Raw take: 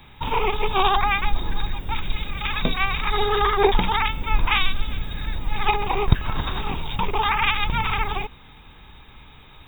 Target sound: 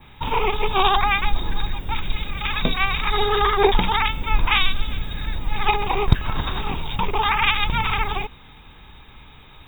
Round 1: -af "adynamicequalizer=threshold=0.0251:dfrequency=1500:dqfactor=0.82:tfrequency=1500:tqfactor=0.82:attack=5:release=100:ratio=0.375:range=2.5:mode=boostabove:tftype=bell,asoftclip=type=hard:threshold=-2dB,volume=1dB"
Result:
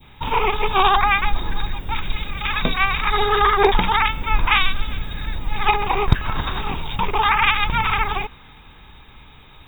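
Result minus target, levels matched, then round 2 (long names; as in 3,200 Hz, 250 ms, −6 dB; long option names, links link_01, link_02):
8,000 Hz band −3.0 dB
-af "adynamicequalizer=threshold=0.0251:dfrequency=5900:dqfactor=0.82:tfrequency=5900:tqfactor=0.82:attack=5:release=100:ratio=0.375:range=2.5:mode=boostabove:tftype=bell,asoftclip=type=hard:threshold=-2dB,volume=1dB"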